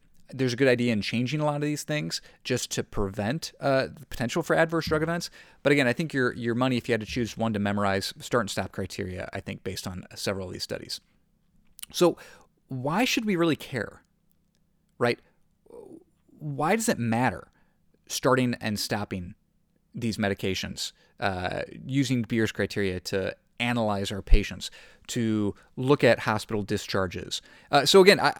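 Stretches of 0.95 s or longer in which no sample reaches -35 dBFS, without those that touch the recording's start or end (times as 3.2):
13.89–15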